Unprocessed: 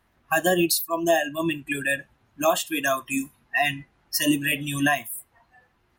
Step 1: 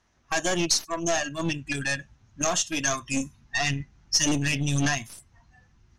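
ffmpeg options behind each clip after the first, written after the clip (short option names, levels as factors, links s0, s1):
-af "asubboost=boost=6.5:cutoff=190,aeval=exprs='(tanh(11.2*val(0)+0.6)-tanh(0.6))/11.2':c=same,lowpass=f=6100:t=q:w=5.8"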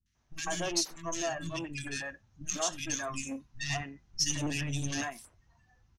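-filter_complex "[0:a]acrossover=split=230|1900[s0][s1][s2];[s2]adelay=60[s3];[s1]adelay=150[s4];[s0][s4][s3]amix=inputs=3:normalize=0,volume=0.447"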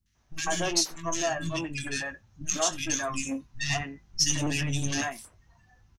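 -filter_complex "[0:a]asplit=2[s0][s1];[s1]adelay=19,volume=0.266[s2];[s0][s2]amix=inputs=2:normalize=0,volume=1.78"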